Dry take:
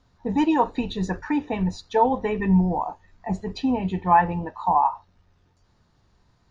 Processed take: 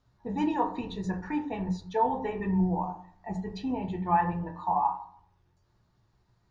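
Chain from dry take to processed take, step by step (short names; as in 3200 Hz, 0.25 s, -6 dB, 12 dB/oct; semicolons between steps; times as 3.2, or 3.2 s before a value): on a send at -3 dB: reverb RT60 0.60 s, pre-delay 4 ms; on the sum: ending taper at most 240 dB/s; gain -9 dB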